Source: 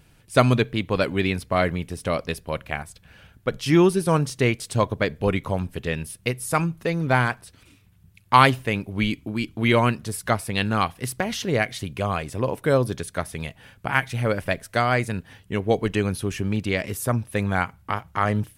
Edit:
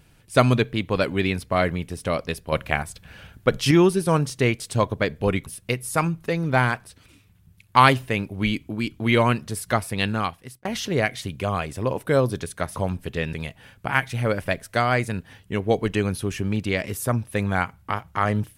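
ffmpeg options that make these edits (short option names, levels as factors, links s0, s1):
-filter_complex "[0:a]asplit=7[s0][s1][s2][s3][s4][s5][s6];[s0]atrim=end=2.522[s7];[s1]atrim=start=2.518:end=3.712,asetpts=PTS-STARTPTS,volume=1.88[s8];[s2]atrim=start=3.708:end=5.462[s9];[s3]atrim=start=6.028:end=11.22,asetpts=PTS-STARTPTS,afade=t=out:st=4.582:d=0.61[s10];[s4]atrim=start=11.22:end=13.332,asetpts=PTS-STARTPTS,afade=t=in:d=0.004:c=hsin[s11];[s5]atrim=start=5.458:end=6.032[s12];[s6]atrim=start=13.328[s13];[s7][s8]acrossfade=d=0.004:c1=hsin:c2=hsin[s14];[s14][s9]acrossfade=d=0.004:c1=hsin:c2=hsin[s15];[s10][s11]concat=n=2:v=0:a=1[s16];[s15][s16]acrossfade=d=0.004:c1=hsin:c2=hsin[s17];[s17][s12]acrossfade=d=0.004:c1=hsin:c2=hsin[s18];[s18][s13]acrossfade=d=0.004:c1=hsin:c2=hsin"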